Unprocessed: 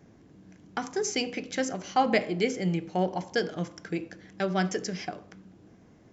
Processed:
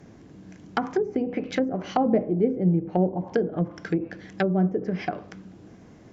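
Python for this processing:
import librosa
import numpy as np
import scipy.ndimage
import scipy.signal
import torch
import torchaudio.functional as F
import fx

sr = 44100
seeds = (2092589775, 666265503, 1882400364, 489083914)

y = fx.env_lowpass_down(x, sr, base_hz=460.0, full_db=-26.0)
y = y * 10.0 ** (7.0 / 20.0)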